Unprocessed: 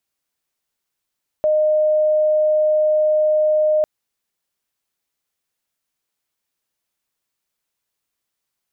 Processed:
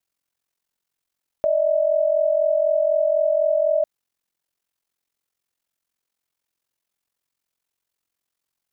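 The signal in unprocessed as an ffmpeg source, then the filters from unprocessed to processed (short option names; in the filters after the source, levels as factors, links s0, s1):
-f lavfi -i "aevalsrc='0.224*sin(2*PI*614*t)':d=2.4:s=44100"
-af "aeval=exprs='val(0)*sin(2*PI*22*n/s)':c=same"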